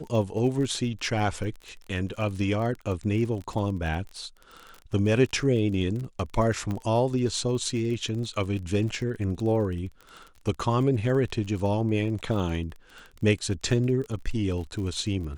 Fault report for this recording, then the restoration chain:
surface crackle 27 per second −34 dBFS
0:06.71: click −20 dBFS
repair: click removal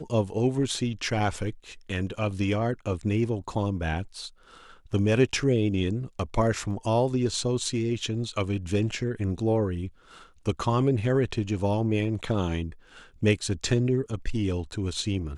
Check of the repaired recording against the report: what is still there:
0:06.71: click

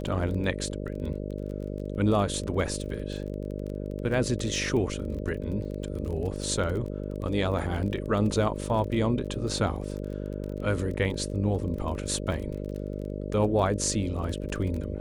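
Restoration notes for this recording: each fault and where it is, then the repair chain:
mains buzz 50 Hz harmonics 12 −34 dBFS
surface crackle 25 per second −34 dBFS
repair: click removal
hum removal 50 Hz, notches 12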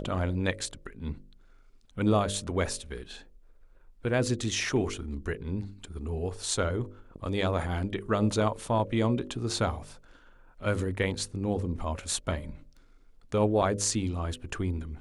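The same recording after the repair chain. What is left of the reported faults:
none of them is left

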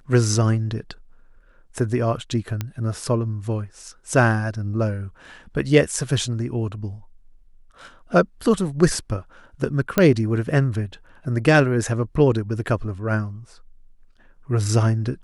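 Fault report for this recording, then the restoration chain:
0:02.61: click −12 dBFS
0:09.98: click −4 dBFS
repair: click removal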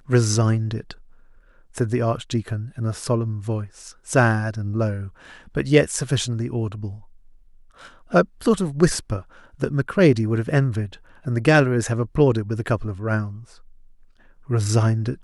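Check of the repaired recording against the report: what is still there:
none of them is left

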